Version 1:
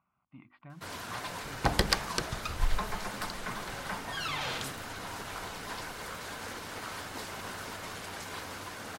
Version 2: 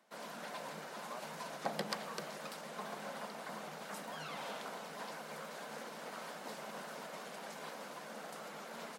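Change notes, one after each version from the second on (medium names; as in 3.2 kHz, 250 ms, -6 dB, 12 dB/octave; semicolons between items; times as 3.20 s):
first sound: entry -0.70 s; second sound -5.5 dB; master: add rippled Chebyshev high-pass 150 Hz, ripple 9 dB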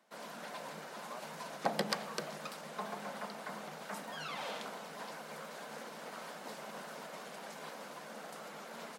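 second sound +5.0 dB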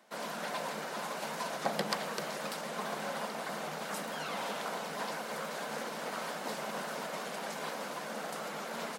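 first sound +8.0 dB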